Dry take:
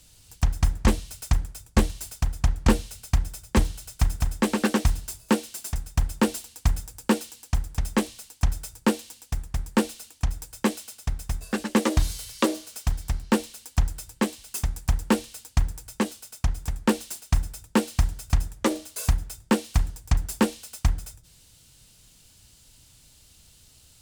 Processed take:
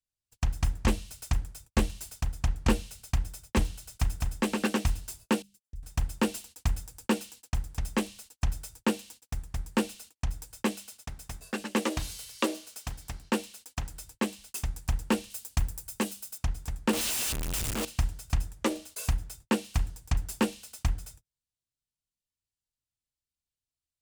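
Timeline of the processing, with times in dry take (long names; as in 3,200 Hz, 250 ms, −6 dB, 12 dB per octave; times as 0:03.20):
0:05.42–0:05.83: guitar amp tone stack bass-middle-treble 10-0-1
0:11.01–0:13.94: low-shelf EQ 120 Hz −10 dB
0:15.30–0:16.38: high-shelf EQ 8,900 Hz +11.5 dB
0:16.93–0:17.85: sign of each sample alone
whole clip: mains-hum notches 50/100/150/200 Hz; dynamic equaliser 2,700 Hz, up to +5 dB, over −50 dBFS, Q 3.6; noise gate −45 dBFS, range −35 dB; level −5 dB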